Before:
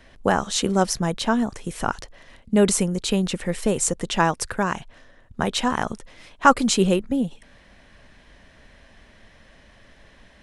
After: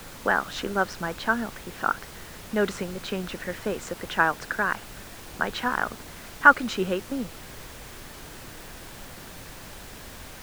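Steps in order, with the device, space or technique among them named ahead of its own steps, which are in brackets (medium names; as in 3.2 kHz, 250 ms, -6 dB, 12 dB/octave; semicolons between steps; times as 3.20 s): horn gramophone (band-pass 240–3600 Hz; peaking EQ 1.5 kHz +12 dB 0.58 oct; wow and flutter; pink noise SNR 13 dB); trim -6 dB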